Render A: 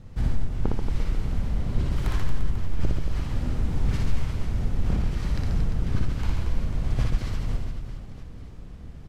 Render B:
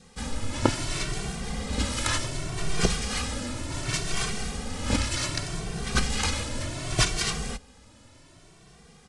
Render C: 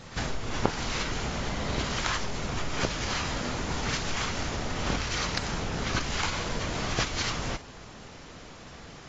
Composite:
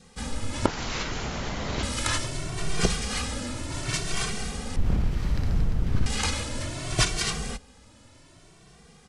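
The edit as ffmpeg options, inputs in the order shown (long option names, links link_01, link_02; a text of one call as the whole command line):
ffmpeg -i take0.wav -i take1.wav -i take2.wav -filter_complex "[1:a]asplit=3[link_01][link_02][link_03];[link_01]atrim=end=0.662[link_04];[2:a]atrim=start=0.658:end=1.832[link_05];[link_02]atrim=start=1.828:end=4.762[link_06];[0:a]atrim=start=4.758:end=6.062[link_07];[link_03]atrim=start=6.058[link_08];[link_04][link_05]acrossfade=duration=0.004:curve1=hsin:curve2=hsin[link_09];[link_09][link_06]acrossfade=duration=0.004:curve1=hsin:curve2=hsin[link_10];[link_10][link_07]acrossfade=duration=0.004:curve1=hsin:curve2=hsin[link_11];[link_11][link_08]acrossfade=duration=0.004:curve1=hsin:curve2=hsin" out.wav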